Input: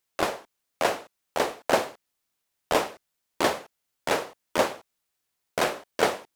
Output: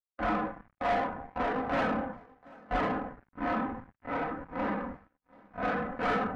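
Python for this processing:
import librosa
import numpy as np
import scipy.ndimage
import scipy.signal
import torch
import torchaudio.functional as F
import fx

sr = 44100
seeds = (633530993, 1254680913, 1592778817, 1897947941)

y = fx.spec_blur(x, sr, span_ms=115.0, at=(2.76, 5.63))
y = scipy.signal.sosfilt(scipy.signal.butter(2, 48.0, 'highpass', fs=sr, output='sos'), y)
y = y + 0.74 * np.pad(y, (int(4.0 * sr / 1000.0), 0))[:len(y)]
y = fx.rev_freeverb(y, sr, rt60_s=1.1, hf_ratio=0.55, predelay_ms=0, drr_db=-5.0)
y = np.sign(y) * np.maximum(np.abs(y) - 10.0 ** (-35.0 / 20.0), 0.0)
y = scipy.signal.sosfilt(scipy.signal.butter(4, 2000.0, 'lowpass', fs=sr, output='sos'), y)
y = fx.low_shelf(y, sr, hz=250.0, db=10.5)
y = np.clip(y, -10.0 ** (-15.0 / 20.0), 10.0 ** (-15.0 / 20.0))
y = y + 10.0 ** (-21.5 / 20.0) * np.pad(y, (int(733 * sr / 1000.0), 0))[:len(y)]
y = fx.leveller(y, sr, passes=2)
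y = fx.peak_eq(y, sr, hz=480.0, db=-10.0, octaves=1.3)
y = fx.spectral_expand(y, sr, expansion=1.5)
y = y * 10.0 ** (-7.0 / 20.0)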